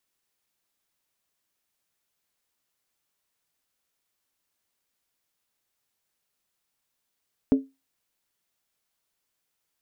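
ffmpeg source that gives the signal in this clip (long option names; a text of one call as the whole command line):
ffmpeg -f lavfi -i "aevalsrc='0.251*pow(10,-3*t/0.23)*sin(2*PI*269*t)+0.0794*pow(10,-3*t/0.182)*sin(2*PI*428.8*t)+0.0251*pow(10,-3*t/0.157)*sin(2*PI*574.6*t)+0.00794*pow(10,-3*t/0.152)*sin(2*PI*617.6*t)+0.00251*pow(10,-3*t/0.141)*sin(2*PI*713.7*t)':duration=0.63:sample_rate=44100" out.wav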